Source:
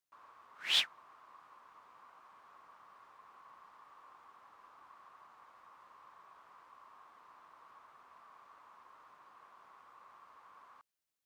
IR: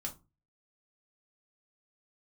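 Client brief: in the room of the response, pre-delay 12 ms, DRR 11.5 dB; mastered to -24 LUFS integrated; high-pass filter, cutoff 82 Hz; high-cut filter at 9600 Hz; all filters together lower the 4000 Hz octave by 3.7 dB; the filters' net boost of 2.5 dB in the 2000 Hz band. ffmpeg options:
-filter_complex "[0:a]highpass=82,lowpass=9.6k,equalizer=f=2k:t=o:g=6,equalizer=f=4k:t=o:g=-7.5,asplit=2[a][b];[1:a]atrim=start_sample=2205,adelay=12[c];[b][c]afir=irnorm=-1:irlink=0,volume=-10.5dB[d];[a][d]amix=inputs=2:normalize=0,volume=10dB"

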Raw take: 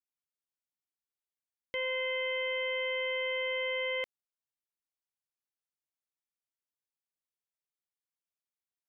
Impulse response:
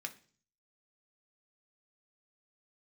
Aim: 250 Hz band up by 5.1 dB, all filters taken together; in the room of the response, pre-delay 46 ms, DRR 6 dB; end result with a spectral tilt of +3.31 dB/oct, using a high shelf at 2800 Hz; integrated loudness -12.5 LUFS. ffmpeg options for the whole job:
-filter_complex "[0:a]equalizer=f=250:t=o:g=7,highshelf=f=2.8k:g=6.5,asplit=2[a][b];[1:a]atrim=start_sample=2205,adelay=46[c];[b][c]afir=irnorm=-1:irlink=0,volume=-5dB[d];[a][d]amix=inputs=2:normalize=0,volume=16.5dB"

